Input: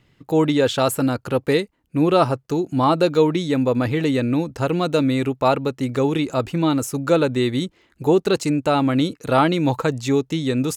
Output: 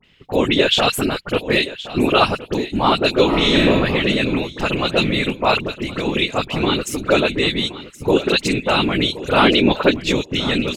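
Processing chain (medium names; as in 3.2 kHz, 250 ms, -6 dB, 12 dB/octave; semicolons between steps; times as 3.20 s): whisper effect; 9.42–10.00 s: graphic EQ 125/250/500/4000/8000 Hz -5/+7/+5/+5/-12 dB; feedback delay 1071 ms, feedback 18%, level -15.5 dB; 5.60–6.06 s: compression, threshold -20 dBFS, peak gain reduction 6 dB; peaking EQ 2.9 kHz +14.5 dB 1.4 oct; 3.25–3.69 s: reverb throw, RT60 1 s, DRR -4.5 dB; phase dispersion highs, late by 42 ms, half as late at 2 kHz; trim -1 dB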